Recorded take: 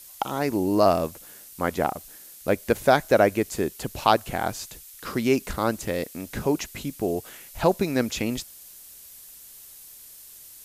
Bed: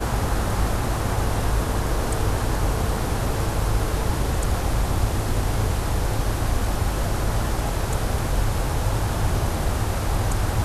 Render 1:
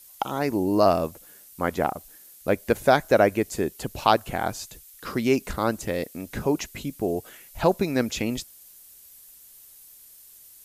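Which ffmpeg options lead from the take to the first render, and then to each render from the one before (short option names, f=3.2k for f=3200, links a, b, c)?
-af "afftdn=nr=6:nf=-47"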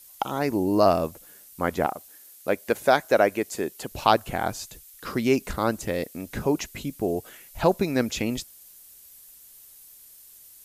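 -filter_complex "[0:a]asettb=1/sr,asplit=3[a][b][c];[a]atrim=end=1.864[d];[b]atrim=start=1.86:end=3.92,asetpts=PTS-STARTPTS,afade=t=in:d=0.004:c=qsin,afade=t=out:st=2.056:d=0.004:c=qsin,highpass=f=320:p=1[e];[c]atrim=start=3.916[f];[d][e]acrossfade=d=0.004:c1=hsin:c2=qsin[g];[g][f]acrossfade=d=0.004:c1=qsin:c2=hsin"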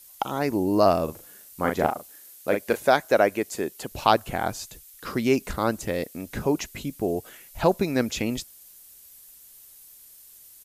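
-filter_complex "[0:a]asplit=3[a][b][c];[a]afade=t=out:st=1.07:d=0.02[d];[b]asplit=2[e][f];[f]adelay=39,volume=-4.5dB[g];[e][g]amix=inputs=2:normalize=0,afade=t=in:st=1.07:d=0.02,afade=t=out:st=2.74:d=0.02[h];[c]afade=t=in:st=2.74:d=0.02[i];[d][h][i]amix=inputs=3:normalize=0"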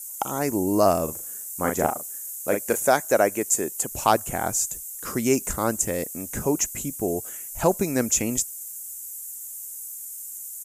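-af "highshelf=f=5.5k:t=q:w=3:g=10.5"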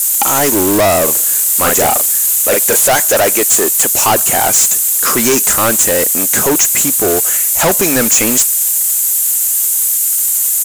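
-filter_complex "[0:a]asplit=2[a][b];[b]highpass=f=720:p=1,volume=31dB,asoftclip=type=tanh:threshold=-4dB[c];[a][c]amix=inputs=2:normalize=0,lowpass=f=1.5k:p=1,volume=-6dB,crystalizer=i=5:c=0"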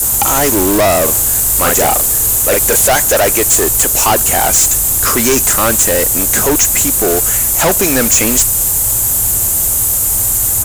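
-filter_complex "[1:a]volume=-3.5dB[a];[0:a][a]amix=inputs=2:normalize=0"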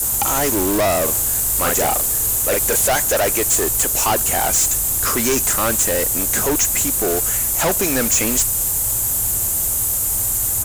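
-af "volume=-6.5dB"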